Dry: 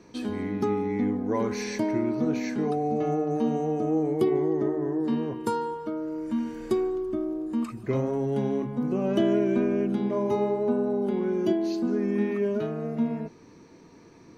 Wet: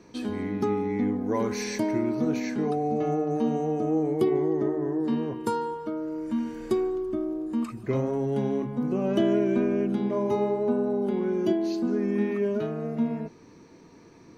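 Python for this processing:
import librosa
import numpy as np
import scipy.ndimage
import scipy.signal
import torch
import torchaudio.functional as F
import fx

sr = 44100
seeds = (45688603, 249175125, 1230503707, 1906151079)

y = fx.high_shelf(x, sr, hz=6700.0, db=7.0, at=(1.21, 2.4))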